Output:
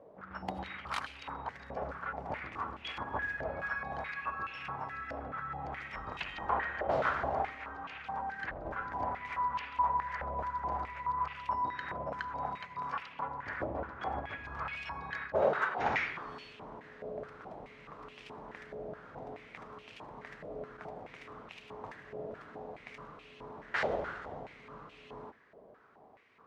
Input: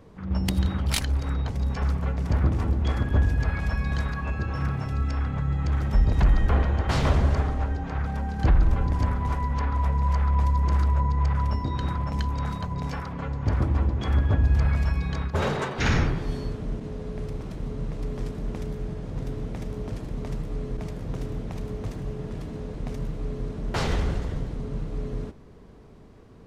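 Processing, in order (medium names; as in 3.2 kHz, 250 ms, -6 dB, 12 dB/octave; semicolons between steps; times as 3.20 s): 7.50–8.65 s: compression, threshold -21 dBFS, peak gain reduction 6.5 dB; on a send at -17 dB: reverberation RT60 0.50 s, pre-delay 62 ms; on the sum: step-sequenced band-pass 4.7 Hz 620–2700 Hz; trim +6.5 dB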